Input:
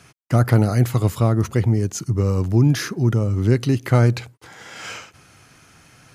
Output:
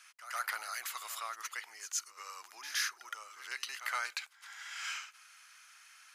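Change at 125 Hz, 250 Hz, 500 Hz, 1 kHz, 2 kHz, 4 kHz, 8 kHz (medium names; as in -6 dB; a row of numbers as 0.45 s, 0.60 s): under -40 dB, under -40 dB, -34.0 dB, -10.5 dB, -5.5 dB, -5.5 dB, -5.5 dB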